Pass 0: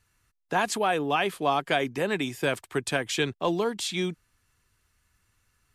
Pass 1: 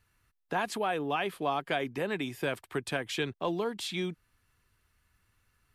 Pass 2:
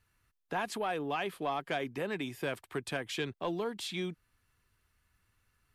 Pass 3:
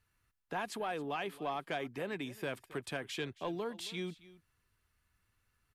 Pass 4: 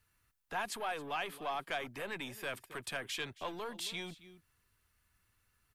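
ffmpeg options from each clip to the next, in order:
ffmpeg -i in.wav -filter_complex "[0:a]equalizer=frequency=7000:width_type=o:width=1:gain=-7,asplit=2[link_01][link_02];[link_02]acompressor=threshold=-34dB:ratio=6,volume=2dB[link_03];[link_01][link_03]amix=inputs=2:normalize=0,volume=-8dB" out.wav
ffmpeg -i in.wav -af "asoftclip=type=tanh:threshold=-19.5dB,volume=-2.5dB" out.wav
ffmpeg -i in.wav -af "aecho=1:1:271:0.112,volume=-3.5dB" out.wav
ffmpeg -i in.wav -filter_complex "[0:a]acrossover=split=670|1400[link_01][link_02][link_03];[link_01]aeval=exprs='(tanh(224*val(0)+0.4)-tanh(0.4))/224':channel_layout=same[link_04];[link_03]crystalizer=i=0.5:c=0[link_05];[link_04][link_02][link_05]amix=inputs=3:normalize=0,volume=2dB" out.wav

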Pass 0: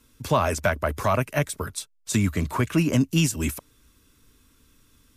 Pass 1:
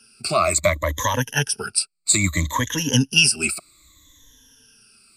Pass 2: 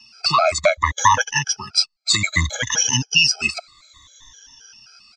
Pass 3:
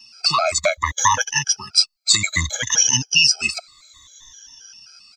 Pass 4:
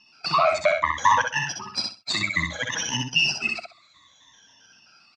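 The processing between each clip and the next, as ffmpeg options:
ffmpeg -i in.wav -af "afftfilt=real='re*pow(10,23/40*sin(2*PI*(1.1*log(max(b,1)*sr/1024/100)/log(2)-(-0.62)*(pts-256)/sr)))':imag='im*pow(10,23/40*sin(2*PI*(1.1*log(max(b,1)*sr/1024/100)/log(2)-(-0.62)*(pts-256)/sr)))':win_size=1024:overlap=0.75,crystalizer=i=7:c=0,lowpass=6400,volume=-6dB" out.wav
ffmpeg -i in.wav -af "firequalizer=gain_entry='entry(110,0);entry(260,-6);entry(390,-9);entry(710,11);entry(2400,6);entry(6000,11);entry(9600,-25)':delay=0.05:min_phase=1,alimiter=limit=-4.5dB:level=0:latency=1:release=326,afftfilt=real='re*gt(sin(2*PI*3.8*pts/sr)*(1-2*mod(floor(b*sr/1024/430),2)),0)':imag='im*gt(sin(2*PI*3.8*pts/sr)*(1-2*mod(floor(b*sr/1024/430),2)),0)':win_size=1024:overlap=0.75,volume=3dB" out.wav
ffmpeg -i in.wav -af "crystalizer=i=2:c=0,volume=-3.5dB" out.wav
ffmpeg -i in.wav -filter_complex "[0:a]aeval=exprs='if(lt(val(0),0),0.708*val(0),val(0))':channel_layout=same,highpass=150,lowpass=2600,asplit=2[link_01][link_02];[link_02]aecho=0:1:64|128|192:0.631|0.139|0.0305[link_03];[link_01][link_03]amix=inputs=2:normalize=0" out.wav

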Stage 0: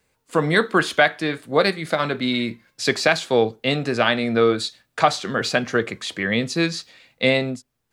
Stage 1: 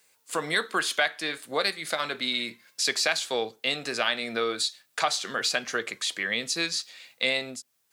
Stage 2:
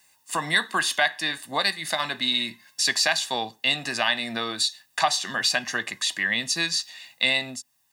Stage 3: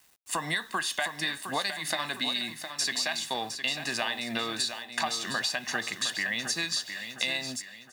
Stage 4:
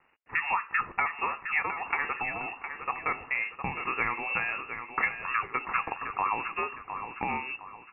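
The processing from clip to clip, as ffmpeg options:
ffmpeg -i in.wav -af "highpass=frequency=650:poles=1,highshelf=frequency=3400:gain=11,acompressor=threshold=-36dB:ratio=1.5" out.wav
ffmpeg -i in.wav -af "aecho=1:1:1.1:0.71,volume=2dB" out.wav
ffmpeg -i in.wav -filter_complex "[0:a]acompressor=threshold=-27dB:ratio=6,acrusher=bits=8:mix=0:aa=0.000001,asplit=2[link_01][link_02];[link_02]aecho=0:1:711|1422|2133|2844:0.355|0.131|0.0486|0.018[link_03];[link_01][link_03]amix=inputs=2:normalize=0" out.wav
ffmpeg -i in.wav -af "lowpass=frequency=2500:width_type=q:width=0.5098,lowpass=frequency=2500:width_type=q:width=0.6013,lowpass=frequency=2500:width_type=q:width=0.9,lowpass=frequency=2500:width_type=q:width=2.563,afreqshift=-2900,volume=3dB" out.wav

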